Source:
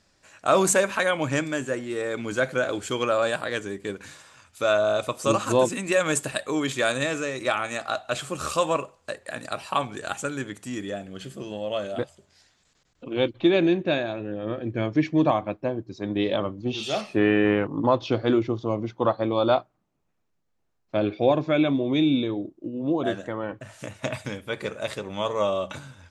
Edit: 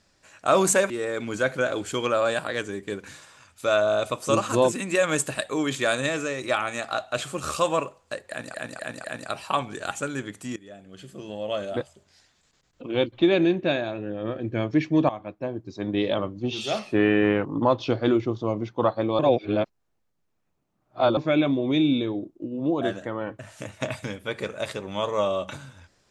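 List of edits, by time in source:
0.90–1.87 s: delete
9.26–9.51 s: loop, 4 plays
10.78–11.77 s: fade in, from -19 dB
15.31–15.93 s: fade in linear, from -12.5 dB
19.41–21.39 s: reverse

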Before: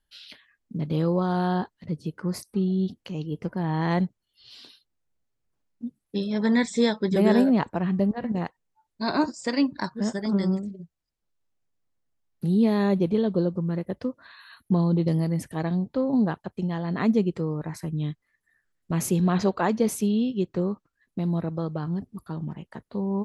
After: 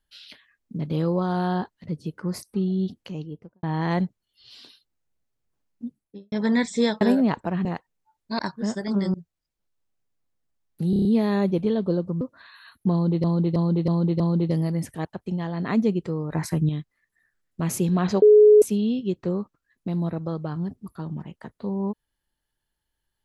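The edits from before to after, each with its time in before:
3.03–3.63 s: studio fade out
5.85–6.32 s: studio fade out
7.01–7.30 s: delete
7.94–8.35 s: delete
9.09–9.77 s: delete
10.52–10.77 s: delete
12.53 s: stutter 0.03 s, 6 plays
13.69–14.06 s: delete
14.77–15.09 s: loop, 5 plays
15.62–16.36 s: delete
17.63–18.00 s: gain +7.5 dB
19.53–19.93 s: bleep 422 Hz -9 dBFS

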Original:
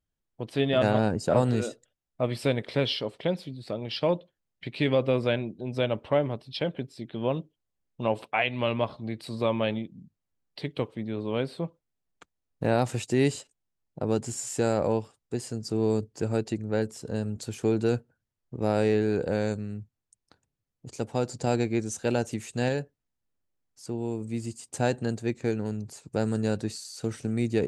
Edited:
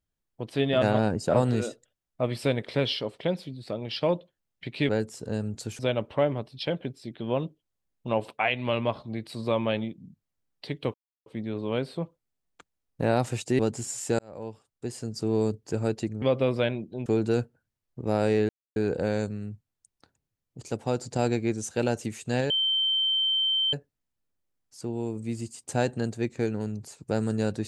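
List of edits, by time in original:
4.89–5.73 s: swap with 16.71–17.61 s
10.88 s: insert silence 0.32 s
13.21–14.08 s: delete
14.68–15.61 s: fade in
19.04 s: insert silence 0.27 s
22.78 s: add tone 3.11 kHz -22 dBFS 1.23 s

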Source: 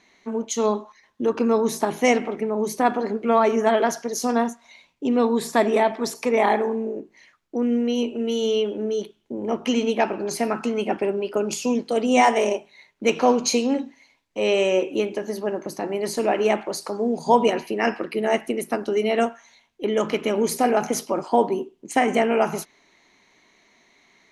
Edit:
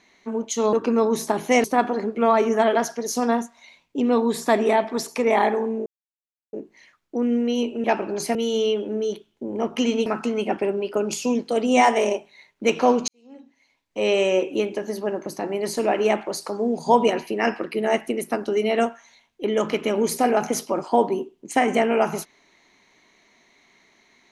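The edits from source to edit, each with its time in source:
0.73–1.26 s: delete
2.17–2.71 s: delete
6.93 s: insert silence 0.67 s
9.95–10.46 s: move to 8.24 s
13.48–14.38 s: fade in quadratic

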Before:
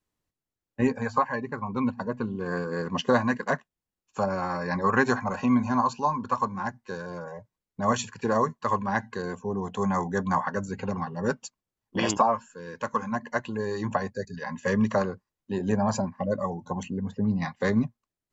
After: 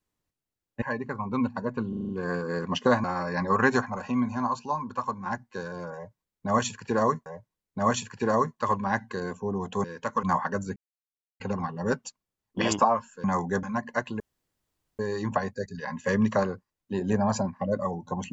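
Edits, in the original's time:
0.82–1.25 s: delete
2.32 s: stutter 0.04 s, 6 plays
3.27–4.38 s: delete
5.15–6.60 s: gain -4 dB
7.28–8.60 s: loop, 2 plays
9.86–10.25 s: swap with 12.62–13.01 s
10.78 s: insert silence 0.64 s
13.58 s: insert room tone 0.79 s

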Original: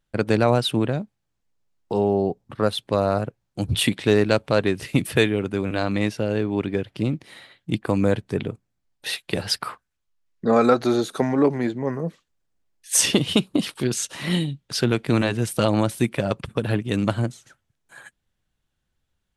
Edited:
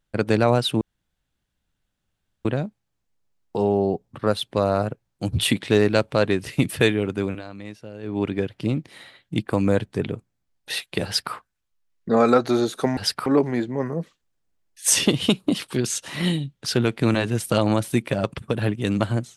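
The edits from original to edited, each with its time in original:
0.81 s: insert room tone 1.64 s
5.63–6.53 s: dip -14.5 dB, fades 0.15 s
9.41–9.70 s: copy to 11.33 s

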